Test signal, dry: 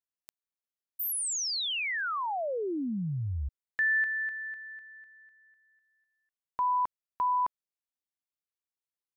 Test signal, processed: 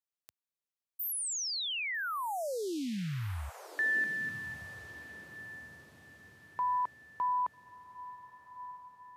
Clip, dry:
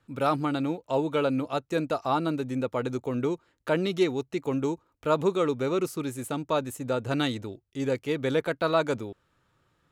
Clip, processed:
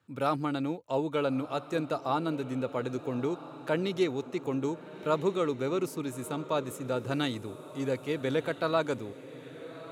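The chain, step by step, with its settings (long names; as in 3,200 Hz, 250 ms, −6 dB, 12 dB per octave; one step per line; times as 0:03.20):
high-pass filter 75 Hz 24 dB per octave
feedback delay with all-pass diffusion 1,283 ms, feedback 43%, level −14.5 dB
level −3.5 dB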